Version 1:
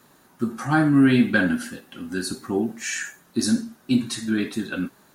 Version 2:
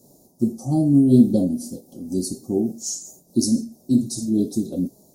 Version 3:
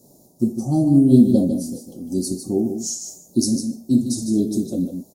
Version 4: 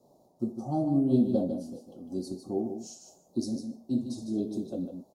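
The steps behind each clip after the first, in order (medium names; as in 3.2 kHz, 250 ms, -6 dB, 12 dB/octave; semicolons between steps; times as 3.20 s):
elliptic band-stop 660–5300 Hz, stop band 80 dB; dynamic bell 950 Hz, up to -6 dB, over -41 dBFS, Q 0.96; random flutter of the level, depth 65%; trim +7 dB
delay 152 ms -8 dB; trim +1 dB
three-band isolator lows -13 dB, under 570 Hz, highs -24 dB, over 3 kHz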